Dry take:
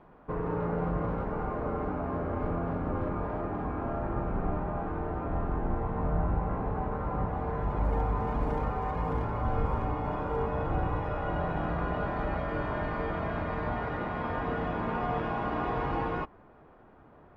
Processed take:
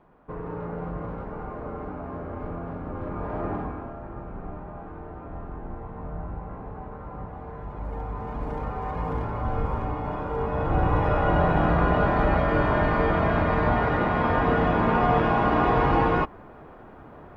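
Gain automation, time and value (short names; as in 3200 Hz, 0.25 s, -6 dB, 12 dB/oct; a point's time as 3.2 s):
2.95 s -2.5 dB
3.51 s +5 dB
3.95 s -6 dB
7.76 s -6 dB
9 s +2 dB
10.35 s +2 dB
11.06 s +10 dB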